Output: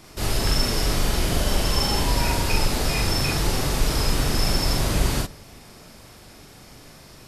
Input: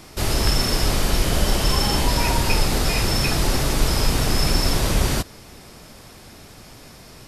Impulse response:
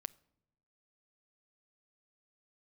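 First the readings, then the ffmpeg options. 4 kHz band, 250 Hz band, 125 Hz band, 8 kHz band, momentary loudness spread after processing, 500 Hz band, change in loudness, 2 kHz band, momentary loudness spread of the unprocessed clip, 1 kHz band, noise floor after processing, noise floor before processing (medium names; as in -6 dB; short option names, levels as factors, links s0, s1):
-2.0 dB, -2.5 dB, -2.0 dB, -2.5 dB, 2 LU, -2.0 dB, -2.5 dB, -2.5 dB, 2 LU, -2.5 dB, -47 dBFS, -44 dBFS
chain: -filter_complex "[0:a]asplit=2[s0][s1];[1:a]atrim=start_sample=2205,adelay=41[s2];[s1][s2]afir=irnorm=-1:irlink=0,volume=1.33[s3];[s0][s3]amix=inputs=2:normalize=0,volume=0.562"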